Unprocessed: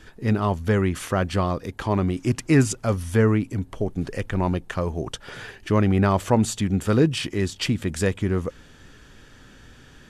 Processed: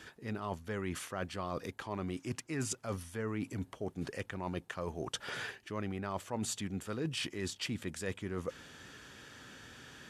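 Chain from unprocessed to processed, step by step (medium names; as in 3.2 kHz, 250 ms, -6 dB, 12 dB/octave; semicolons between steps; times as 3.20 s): high-pass 89 Hz; bass shelf 460 Hz -6.5 dB; reverse; compression 6:1, threshold -35 dBFS, peak gain reduction 18 dB; reverse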